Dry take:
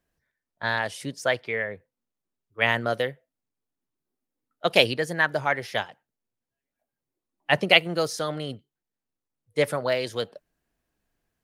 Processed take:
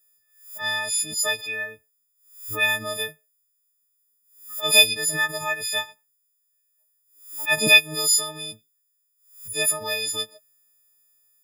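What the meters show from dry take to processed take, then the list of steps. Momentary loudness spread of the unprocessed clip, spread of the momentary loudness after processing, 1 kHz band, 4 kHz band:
14 LU, 20 LU, -4.0 dB, +6.0 dB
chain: frequency quantiser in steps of 6 st; pre-emphasis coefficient 0.8; backwards sustainer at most 110 dB/s; gain +4 dB

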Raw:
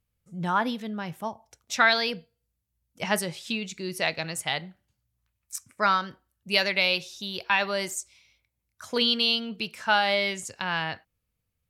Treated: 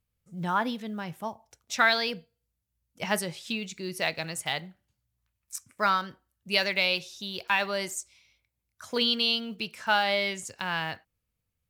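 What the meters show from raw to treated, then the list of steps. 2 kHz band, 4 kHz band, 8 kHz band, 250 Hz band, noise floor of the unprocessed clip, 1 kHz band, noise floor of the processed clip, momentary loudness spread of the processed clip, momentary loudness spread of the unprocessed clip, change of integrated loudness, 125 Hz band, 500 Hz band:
-2.0 dB, -2.0 dB, -2.0 dB, -2.0 dB, -80 dBFS, -2.0 dB, -82 dBFS, 14 LU, 14 LU, -2.0 dB, -2.0 dB, -2.0 dB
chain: block floating point 7-bit; gain -2 dB

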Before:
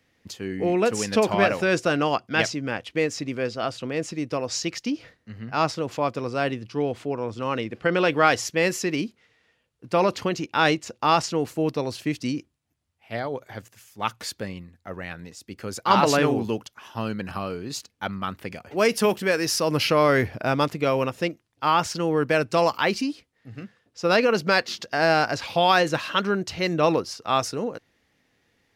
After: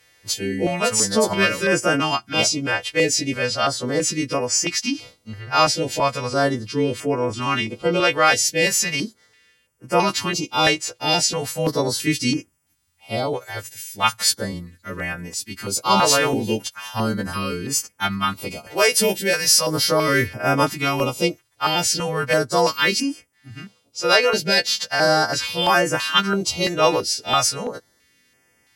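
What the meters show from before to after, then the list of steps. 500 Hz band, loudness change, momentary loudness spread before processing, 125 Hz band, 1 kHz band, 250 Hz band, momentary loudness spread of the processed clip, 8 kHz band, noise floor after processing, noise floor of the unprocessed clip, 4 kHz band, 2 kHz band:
+2.0 dB, +4.0 dB, 15 LU, +3.0 dB, +2.5 dB, +2.0 dB, 12 LU, +12.5 dB, -63 dBFS, -70 dBFS, +9.0 dB, +4.5 dB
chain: frequency quantiser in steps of 2 st; in parallel at +2 dB: vocal rider within 5 dB 0.5 s; on the sum: stepped notch 3 Hz 220–3900 Hz; gain -3 dB

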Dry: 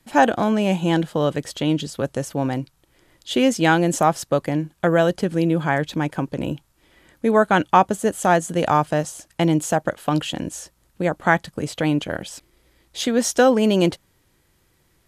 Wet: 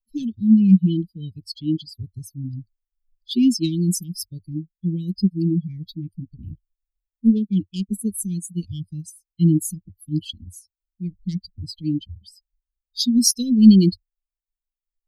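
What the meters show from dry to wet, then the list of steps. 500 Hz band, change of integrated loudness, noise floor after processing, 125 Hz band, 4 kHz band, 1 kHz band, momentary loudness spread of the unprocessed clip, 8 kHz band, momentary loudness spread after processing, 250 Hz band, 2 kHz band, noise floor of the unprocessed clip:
-16.0 dB, +0.5 dB, under -85 dBFS, +2.0 dB, -0.5 dB, under -40 dB, 12 LU, +2.0 dB, 20 LU, +3.0 dB, under -30 dB, -63 dBFS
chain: per-bin expansion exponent 3; ripple EQ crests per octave 0.87, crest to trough 13 dB; in parallel at -7 dB: soft clip -14 dBFS, distortion -12 dB; on the sum: Chebyshev band-stop 330–3200 Hz, order 5; gain +6.5 dB

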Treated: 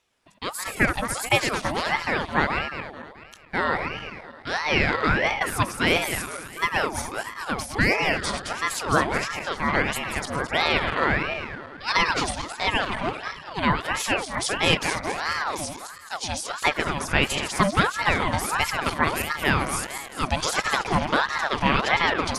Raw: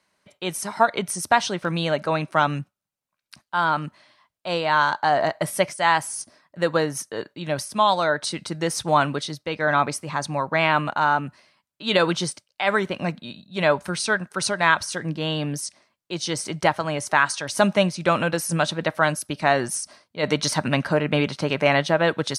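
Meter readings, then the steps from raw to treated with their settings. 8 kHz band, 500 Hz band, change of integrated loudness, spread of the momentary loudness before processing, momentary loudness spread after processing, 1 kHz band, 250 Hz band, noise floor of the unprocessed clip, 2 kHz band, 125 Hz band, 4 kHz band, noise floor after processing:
-2.0 dB, -5.0 dB, -1.5 dB, 10 LU, 10 LU, -2.5 dB, -2.0 dB, -83 dBFS, +1.0 dB, -2.0 dB, +1.0 dB, -43 dBFS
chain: regenerating reverse delay 0.108 s, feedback 70%, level -7.5 dB; ring modulator with a swept carrier 960 Hz, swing 60%, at 1.5 Hz

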